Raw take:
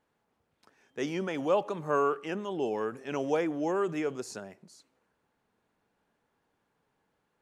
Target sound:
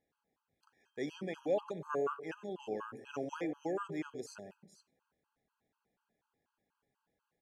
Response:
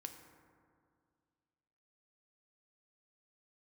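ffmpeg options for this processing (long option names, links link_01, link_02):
-filter_complex "[0:a]asplit=2[link_01][link_02];[link_02]adelay=97,lowpass=frequency=800:poles=1,volume=-11.5dB,asplit=2[link_03][link_04];[link_04]adelay=97,lowpass=frequency=800:poles=1,volume=0.44,asplit=2[link_05][link_06];[link_06]adelay=97,lowpass=frequency=800:poles=1,volume=0.44,asplit=2[link_07][link_08];[link_08]adelay=97,lowpass=frequency=800:poles=1,volume=0.44[link_09];[link_01][link_03][link_05][link_07][link_09]amix=inputs=5:normalize=0,afftfilt=real='re*gt(sin(2*PI*4.1*pts/sr)*(1-2*mod(floor(b*sr/1024/820),2)),0)':imag='im*gt(sin(2*PI*4.1*pts/sr)*(1-2*mod(floor(b*sr/1024/820),2)),0)':win_size=1024:overlap=0.75,volume=-5.5dB"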